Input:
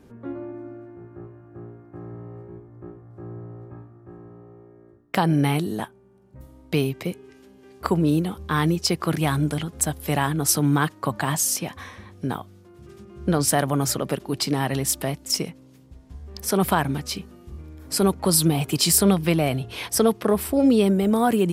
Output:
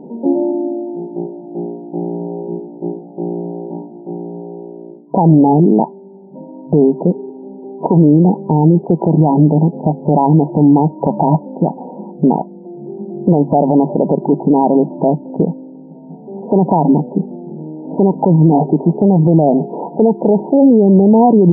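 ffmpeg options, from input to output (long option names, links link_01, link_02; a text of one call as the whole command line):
ffmpeg -i in.wav -filter_complex "[0:a]asettb=1/sr,asplit=3[link_01][link_02][link_03];[link_01]atrim=end=18.514[link_04];[link_02]atrim=start=18.51:end=19.01,asetpts=PTS-STARTPTS,afade=type=in:duration=0.004:curve=qsin,afade=type=out:start_time=0.496:duration=0.004:curve=qsin,highpass=190[link_05];[link_03]atrim=start=19.006[link_06];[link_04][link_05]acrossfade=duration=0.004:curve1=hsin:curve2=qsin[link_07];[link_07][link_06]acrossfade=duration=0.004:curve1=qsin:curve2=hsin,afftfilt=real='re*between(b*sr/4096,150,970)':imag='im*between(b*sr/4096,150,970)':win_size=4096:overlap=0.75,alimiter=level_in=20dB:limit=-1dB:release=50:level=0:latency=1,volume=-1dB" out.wav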